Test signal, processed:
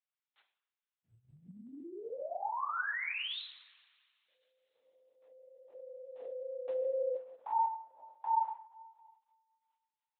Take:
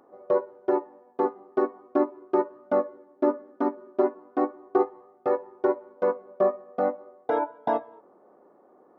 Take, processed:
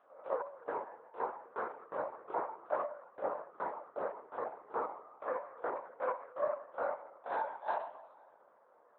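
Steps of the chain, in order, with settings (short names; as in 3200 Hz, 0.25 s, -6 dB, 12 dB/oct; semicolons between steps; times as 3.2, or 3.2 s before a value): stepped spectrum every 50 ms; two-slope reverb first 0.58 s, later 2.1 s, from -22 dB, DRR 2.5 dB; LPC vocoder at 8 kHz whisper; HPF 840 Hz 12 dB/oct; in parallel at +1 dB: compressor, threshold -44 dBFS; on the sum: gain -7 dB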